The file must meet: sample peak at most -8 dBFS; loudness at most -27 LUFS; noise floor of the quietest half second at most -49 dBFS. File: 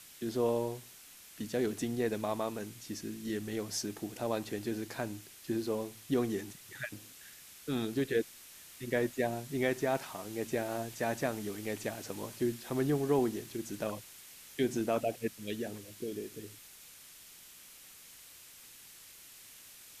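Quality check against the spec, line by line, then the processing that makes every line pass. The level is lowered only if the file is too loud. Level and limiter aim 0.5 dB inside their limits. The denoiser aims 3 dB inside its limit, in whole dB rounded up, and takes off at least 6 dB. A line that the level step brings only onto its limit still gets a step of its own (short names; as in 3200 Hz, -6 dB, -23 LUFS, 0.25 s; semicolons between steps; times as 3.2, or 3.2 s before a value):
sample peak -17.5 dBFS: OK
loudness -35.5 LUFS: OK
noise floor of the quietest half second -54 dBFS: OK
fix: none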